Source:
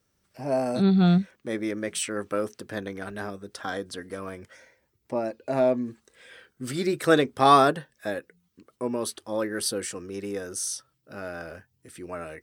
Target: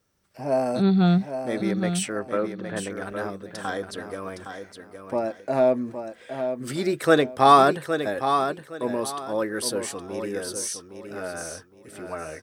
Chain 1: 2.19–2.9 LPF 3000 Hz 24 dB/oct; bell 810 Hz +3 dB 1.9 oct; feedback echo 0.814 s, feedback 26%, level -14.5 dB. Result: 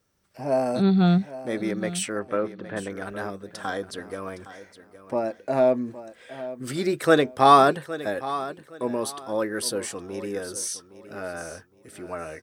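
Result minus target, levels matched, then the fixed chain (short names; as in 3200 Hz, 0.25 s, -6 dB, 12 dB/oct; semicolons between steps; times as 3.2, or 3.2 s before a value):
echo-to-direct -6.5 dB
2.19–2.9 LPF 3000 Hz 24 dB/oct; bell 810 Hz +3 dB 1.9 oct; feedback echo 0.814 s, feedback 26%, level -8 dB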